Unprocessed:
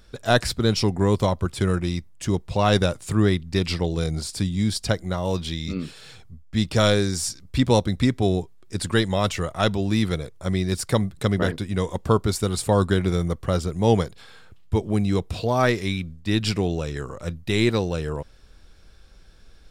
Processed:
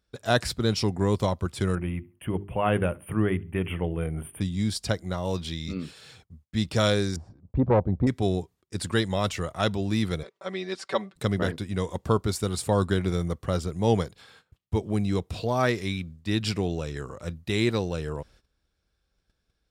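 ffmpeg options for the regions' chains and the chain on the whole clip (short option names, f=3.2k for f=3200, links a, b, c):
-filter_complex "[0:a]asettb=1/sr,asplit=3[a][b][c];[a]atrim=end=1.754[d];[b]atrim=start=1.75:end=4.41,asetpts=PTS-STARTPTS,afade=t=in:d=0.004:c=qsin,afade=t=out:st=2.656:d=0.004:c=qsin,asuperstop=centerf=5500:order=20:qfactor=0.95,bandreject=f=50:t=h:w=6,bandreject=f=100:t=h:w=6,bandreject=f=150:t=h:w=6,bandreject=f=200:t=h:w=6,bandreject=f=250:t=h:w=6,bandreject=f=300:t=h:w=6,bandreject=f=350:t=h:w=6,bandreject=f=400:t=h:w=6,asplit=2[e][f];[f]adelay=70,lowpass=f=4k:p=1,volume=-24dB,asplit=2[g][h];[h]adelay=70,lowpass=f=4k:p=1,volume=0.36[i];[e][g][i]amix=inputs=3:normalize=0,atrim=end_sample=117306[j];[c]atrim=start=4.406[k];[d][j]acrossfade=d=0.004:c1=hsin:c2=qsin[l];[l][k]acrossfade=d=0.004:c1=qsin:c2=hsin,asettb=1/sr,asplit=3[m][n][o];[m]atrim=end=7.164[p];[n]atrim=start=7.16:end=8.07,asetpts=PTS-STARTPTS,afade=t=in:d=0.004:c=qsin,afade=t=out:st=0.906:d=0.004:c=qsin,lowpass=f=760:t=q:w=1.9,lowshelf=f=230:g=8.5,aeval=exprs='(tanh(2.82*val(0)+0.65)-tanh(0.65))/2.82':c=same[q];[o]atrim=start=8.066[r];[p][q]acrossfade=d=0.004:c1=hsin:c2=qsin[s];[s][r]acrossfade=d=0.004:c1=qsin:c2=hsin,asettb=1/sr,asplit=3[t][u][v];[t]atrim=end=10.234[w];[u]atrim=start=10.23:end=11.16,asetpts=PTS-STARTPTS,afade=t=in:d=0.004:c=qsin,afade=t=out:st=0.926:d=0.004:c=qsin,highpass=440,lowpass=3.8k,aecho=1:1:5.2:0.91,atrim=end_sample=41013[x];[v]atrim=start=11.156[y];[w][x]acrossfade=d=0.004:c1=hsin:c2=qsin[z];[z][y]acrossfade=d=0.004:c1=qsin:c2=hsin,highpass=44,agate=range=-17dB:threshold=-49dB:ratio=16:detection=peak,volume=-4dB"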